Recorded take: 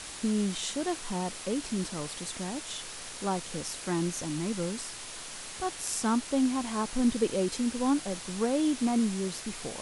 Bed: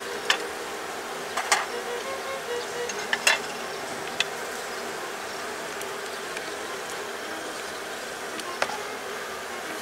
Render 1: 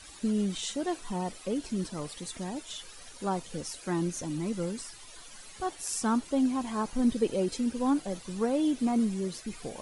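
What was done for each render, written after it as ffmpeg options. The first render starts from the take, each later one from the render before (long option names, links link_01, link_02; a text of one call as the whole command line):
ffmpeg -i in.wav -af "afftdn=noise_reduction=13:noise_floor=-42" out.wav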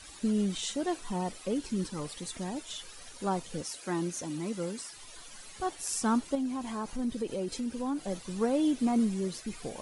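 ffmpeg -i in.wav -filter_complex "[0:a]asettb=1/sr,asplit=3[link_01][link_02][link_03];[link_01]atrim=end=1.604[link_04];[link_02]atrim=start=1.6:end=2.05,asetpts=PTS-STARTPTS,afade=type=in:duration=0.004:curve=qsin,afade=type=out:start_time=0.446:duration=0.004:curve=qsin,asuperstop=centerf=660:order=4:qfactor=4.7[link_05];[link_03]atrim=start=2.046[link_06];[link_04][link_05]acrossfade=duration=0.004:curve1=hsin:curve2=qsin[link_07];[link_07][link_06]acrossfade=duration=0.004:curve1=qsin:curve2=hsin,asettb=1/sr,asplit=3[link_08][link_09][link_10];[link_08]atrim=end=3.624[link_11];[link_09]atrim=start=3.62:end=4.97,asetpts=PTS-STARTPTS,afade=type=in:duration=0.004:curve=qsin,afade=type=out:start_time=1.346:duration=0.004:curve=qsin,highpass=frequency=220:poles=1[link_12];[link_10]atrim=start=4.966[link_13];[link_11][link_12]acrossfade=duration=0.004:curve1=hsin:curve2=qsin[link_14];[link_14][link_13]acrossfade=duration=0.004:curve1=qsin:curve2=hsin,asettb=1/sr,asplit=3[link_15][link_16][link_17];[link_15]atrim=end=6.354[link_18];[link_16]atrim=start=6.35:end=8.07,asetpts=PTS-STARTPTS,afade=type=in:duration=0.004:curve=qsin,afade=type=out:start_time=1.716:duration=0.004:curve=qsin,acompressor=threshold=-34dB:ratio=2:attack=3.2:release=140:knee=1:detection=peak[link_19];[link_17]atrim=start=8.066[link_20];[link_18][link_19]acrossfade=duration=0.004:curve1=hsin:curve2=qsin[link_21];[link_21][link_20]acrossfade=duration=0.004:curve1=qsin:curve2=hsin" out.wav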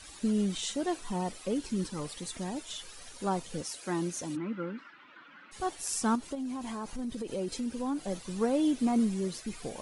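ffmpeg -i in.wav -filter_complex "[0:a]asplit=3[link_01][link_02][link_03];[link_01]afade=type=out:start_time=4.35:duration=0.02[link_04];[link_02]highpass=frequency=170:width=0.5412,highpass=frequency=170:width=1.3066,equalizer=frequency=290:width_type=q:width=4:gain=7,equalizer=frequency=430:width_type=q:width=4:gain=-9,equalizer=frequency=700:width_type=q:width=4:gain=-9,equalizer=frequency=1400:width_type=q:width=4:gain=9,lowpass=frequency=2600:width=0.5412,lowpass=frequency=2600:width=1.3066,afade=type=in:start_time=4.35:duration=0.02,afade=type=out:start_time=5.51:duration=0.02[link_05];[link_03]afade=type=in:start_time=5.51:duration=0.02[link_06];[link_04][link_05][link_06]amix=inputs=3:normalize=0,asettb=1/sr,asplit=3[link_07][link_08][link_09];[link_07]atrim=end=6.154[link_10];[link_08]atrim=start=6.15:end=7.33,asetpts=PTS-STARTPTS,afade=type=in:duration=0.004:curve=qsin,afade=type=out:start_time=1.176:duration=0.004:curve=qsin,acompressor=threshold=-33dB:ratio=3:attack=3.2:release=140:knee=1:detection=peak[link_11];[link_09]atrim=start=7.326[link_12];[link_10][link_11]acrossfade=duration=0.004:curve1=hsin:curve2=qsin[link_13];[link_13][link_12]acrossfade=duration=0.004:curve1=qsin:curve2=hsin" out.wav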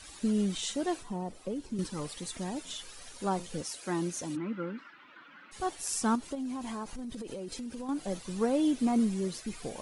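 ffmpeg -i in.wav -filter_complex "[0:a]asettb=1/sr,asplit=3[link_01][link_02][link_03];[link_01]atrim=end=1.024[link_04];[link_02]atrim=start=1.02:end=1.79,asetpts=PTS-STARTPTS,afade=type=in:duration=0.004:curve=qsin,afade=type=out:start_time=0.766:duration=0.004:curve=qsin,acrossover=split=89|980[link_05][link_06][link_07];[link_05]acompressor=threshold=-49dB:ratio=4[link_08];[link_06]acompressor=threshold=-33dB:ratio=4[link_09];[link_07]acompressor=threshold=-57dB:ratio=4[link_10];[link_08][link_09][link_10]amix=inputs=3:normalize=0[link_11];[link_03]atrim=start=1.786[link_12];[link_04][link_11]acrossfade=duration=0.004:curve1=hsin:curve2=qsin[link_13];[link_13][link_12]acrossfade=duration=0.004:curve1=qsin:curve2=hsin,asplit=3[link_14][link_15][link_16];[link_14]afade=type=out:start_time=2.64:duration=0.02[link_17];[link_15]bandreject=frequency=88.58:width_type=h:width=4,bandreject=frequency=177.16:width_type=h:width=4,bandreject=frequency=265.74:width_type=h:width=4,bandreject=frequency=354.32:width_type=h:width=4,bandreject=frequency=442.9:width_type=h:width=4,bandreject=frequency=531.48:width_type=h:width=4,afade=type=in:start_time=2.64:duration=0.02,afade=type=out:start_time=3.45:duration=0.02[link_18];[link_16]afade=type=in:start_time=3.45:duration=0.02[link_19];[link_17][link_18][link_19]amix=inputs=3:normalize=0,asettb=1/sr,asplit=3[link_20][link_21][link_22];[link_20]atrim=end=6.834[link_23];[link_21]atrim=start=6.83:end=7.89,asetpts=PTS-STARTPTS,afade=type=in:duration=0.004:curve=qsin,afade=type=out:start_time=1.056:duration=0.004:curve=qsin,acompressor=threshold=-36dB:ratio=6:attack=3.2:release=140:knee=1:detection=peak[link_24];[link_22]atrim=start=7.886[link_25];[link_23][link_24]acrossfade=duration=0.004:curve1=hsin:curve2=qsin[link_26];[link_26][link_25]acrossfade=duration=0.004:curve1=qsin:curve2=hsin" out.wav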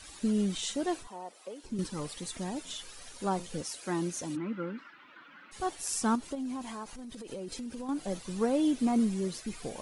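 ffmpeg -i in.wav -filter_complex "[0:a]asettb=1/sr,asplit=3[link_01][link_02][link_03];[link_01]atrim=end=1.074[link_04];[link_02]atrim=start=1.07:end=1.64,asetpts=PTS-STARTPTS,afade=type=in:duration=0.004:curve=qsin,afade=type=out:start_time=0.566:duration=0.004:curve=qsin,highpass=580[link_05];[link_03]atrim=start=1.636[link_06];[link_04][link_05]acrossfade=duration=0.004:curve1=hsin:curve2=qsin[link_07];[link_07][link_06]acrossfade=duration=0.004:curve1=qsin:curve2=hsin,asettb=1/sr,asplit=3[link_08][link_09][link_10];[link_08]atrim=end=6.624[link_11];[link_09]atrim=start=6.62:end=7.32,asetpts=PTS-STARTPTS,afade=type=in:duration=0.004:curve=qsin,afade=type=out:start_time=0.696:duration=0.004:curve=qsin,lowshelf=frequency=440:gain=-6[link_12];[link_10]atrim=start=7.316[link_13];[link_11][link_12]acrossfade=duration=0.004:curve1=hsin:curve2=qsin[link_14];[link_14][link_13]acrossfade=duration=0.004:curve1=qsin:curve2=hsin" out.wav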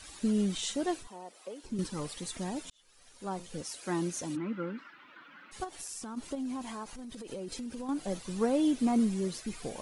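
ffmpeg -i in.wav -filter_complex "[0:a]asettb=1/sr,asplit=3[link_01][link_02][link_03];[link_01]atrim=end=0.914[link_04];[link_02]atrim=start=0.91:end=1.34,asetpts=PTS-STARTPTS,afade=type=in:duration=0.004:curve=qsin,afade=type=out:start_time=0.426:duration=0.004:curve=qsin,equalizer=frequency=910:width=0.86:gain=-4.5[link_05];[link_03]atrim=start=1.336[link_06];[link_04][link_05]acrossfade=duration=0.004:curve1=hsin:curve2=qsin[link_07];[link_07][link_06]acrossfade=duration=0.004:curve1=qsin:curve2=hsin,asplit=3[link_08][link_09][link_10];[link_08]afade=type=out:start_time=5.63:duration=0.02[link_11];[link_09]acompressor=threshold=-38dB:ratio=10:attack=3.2:release=140:knee=1:detection=peak,afade=type=in:start_time=5.63:duration=0.02,afade=type=out:start_time=6.16:duration=0.02[link_12];[link_10]afade=type=in:start_time=6.16:duration=0.02[link_13];[link_11][link_12][link_13]amix=inputs=3:normalize=0,asplit=2[link_14][link_15];[link_14]atrim=end=2.7,asetpts=PTS-STARTPTS,afade=type=out:start_time=2.696:duration=0.004:curve=hsin[link_16];[link_15]atrim=start=2.7,asetpts=PTS-STARTPTS,afade=type=in:duration=1.24[link_17];[link_16][link_17]concat=n=2:v=0:a=1" out.wav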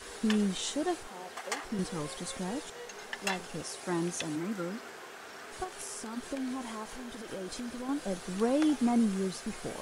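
ffmpeg -i in.wav -i bed.wav -filter_complex "[1:a]volume=-14dB[link_01];[0:a][link_01]amix=inputs=2:normalize=0" out.wav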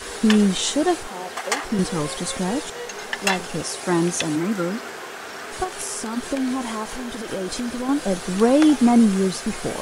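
ffmpeg -i in.wav -af "volume=12dB" out.wav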